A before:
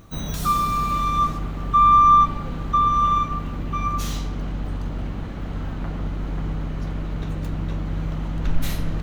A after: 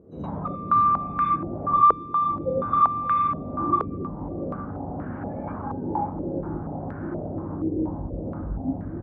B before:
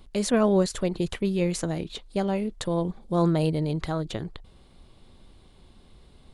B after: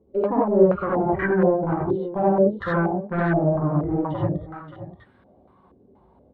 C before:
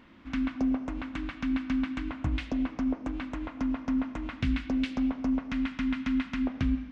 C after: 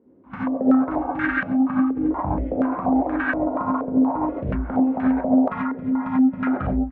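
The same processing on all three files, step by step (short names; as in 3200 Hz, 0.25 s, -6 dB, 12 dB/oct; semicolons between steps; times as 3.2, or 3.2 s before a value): treble ducked by the level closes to 440 Hz, closed at -21 dBFS; HPF 54 Hz 24 dB/oct; spectral noise reduction 18 dB; low shelf 130 Hz -7 dB; in parallel at +1.5 dB: compressor, threshold -37 dBFS; on the sum: soft clip -30.5 dBFS; on a send: echo 0.577 s -14 dB; on the sum: non-linear reverb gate 0.11 s rising, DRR -5 dB; stepped low-pass 4.2 Hz 450–1600 Hz; gain +5 dB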